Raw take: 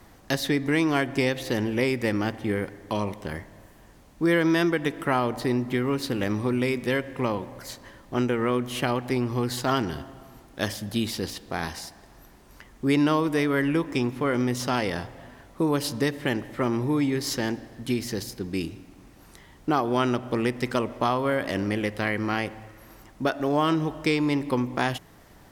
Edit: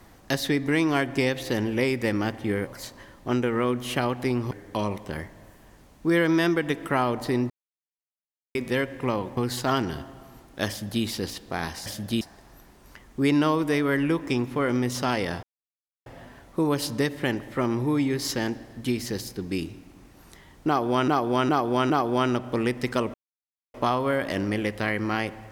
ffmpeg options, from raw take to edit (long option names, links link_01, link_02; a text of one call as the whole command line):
ffmpeg -i in.wav -filter_complex "[0:a]asplit=13[link_01][link_02][link_03][link_04][link_05][link_06][link_07][link_08][link_09][link_10][link_11][link_12][link_13];[link_01]atrim=end=2.672[link_14];[link_02]atrim=start=7.528:end=9.372[link_15];[link_03]atrim=start=2.668:end=5.66,asetpts=PTS-STARTPTS,afade=type=out:start_time=2.988:duration=0.004:curve=hsin[link_16];[link_04]atrim=start=5.66:end=6.71,asetpts=PTS-STARTPTS,volume=0[link_17];[link_05]atrim=start=6.71:end=7.532,asetpts=PTS-STARTPTS,afade=type=in:duration=0.004:curve=hsin[link_18];[link_06]atrim=start=9.368:end=11.862[link_19];[link_07]atrim=start=10.688:end=11.042[link_20];[link_08]atrim=start=11.858:end=15.08,asetpts=PTS-STARTPTS,afade=type=out:start_time=3.218:duration=0.004:curve=hsin,apad=pad_dur=0.63[link_21];[link_09]atrim=start=15.08:end=20.102,asetpts=PTS-STARTPTS,afade=type=in:duration=0.004:curve=hsin[link_22];[link_10]atrim=start=19.688:end=20.102[link_23];[link_11]atrim=start=19.688:end=20.102[link_24];[link_12]atrim=start=19.688:end=20.93,asetpts=PTS-STARTPTS,afade=type=out:start_time=1.238:duration=0.004:curve=hsin,apad=pad_dur=0.6[link_25];[link_13]atrim=start=20.93,asetpts=PTS-STARTPTS,afade=type=in:duration=0.004:curve=hsin[link_26];[link_14][link_15]acrossfade=duration=0.004:curve1=hsin:curve2=hsin[link_27];[link_16][link_17][link_18]concat=n=3:v=0:a=1[link_28];[link_27][link_28]acrossfade=duration=0.004:curve1=hsin:curve2=hsin[link_29];[link_29][link_19]acrossfade=duration=0.004:curve1=hsin:curve2=hsin[link_30];[link_30][link_20]acrossfade=duration=0.004:curve1=hsin:curve2=hsin[link_31];[link_21][link_22]concat=n=2:v=0:a=1[link_32];[link_31][link_32]acrossfade=duration=0.004:curve1=hsin:curve2=hsin[link_33];[link_33][link_23]acrossfade=duration=0.004:curve1=hsin:curve2=hsin[link_34];[link_34][link_24]acrossfade=duration=0.004:curve1=hsin:curve2=hsin[link_35];[link_25][link_26]concat=n=2:v=0:a=1[link_36];[link_35][link_36]acrossfade=duration=0.004:curve1=hsin:curve2=hsin" out.wav